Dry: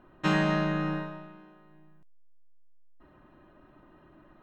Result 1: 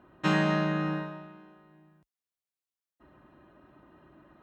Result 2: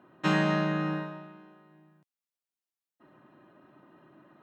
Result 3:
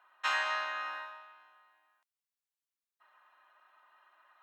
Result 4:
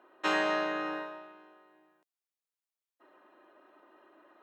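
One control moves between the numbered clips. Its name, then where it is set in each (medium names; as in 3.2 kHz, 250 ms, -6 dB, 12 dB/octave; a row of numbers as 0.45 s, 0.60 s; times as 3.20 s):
high-pass, cutoff frequency: 47 Hz, 120 Hz, 910 Hz, 360 Hz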